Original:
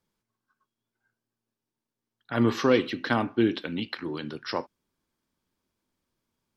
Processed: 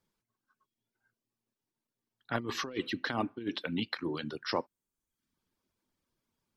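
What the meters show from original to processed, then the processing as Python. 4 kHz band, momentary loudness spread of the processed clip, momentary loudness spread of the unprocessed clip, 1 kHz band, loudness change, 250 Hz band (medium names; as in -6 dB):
-3.0 dB, 3 LU, 11 LU, -5.5 dB, -8.0 dB, -9.5 dB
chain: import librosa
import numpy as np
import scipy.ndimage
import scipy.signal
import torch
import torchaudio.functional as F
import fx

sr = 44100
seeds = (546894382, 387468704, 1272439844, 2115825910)

y = fx.dereverb_blind(x, sr, rt60_s=0.7)
y = fx.over_compress(y, sr, threshold_db=-27.0, ratio=-0.5)
y = F.gain(torch.from_numpy(y), -4.5).numpy()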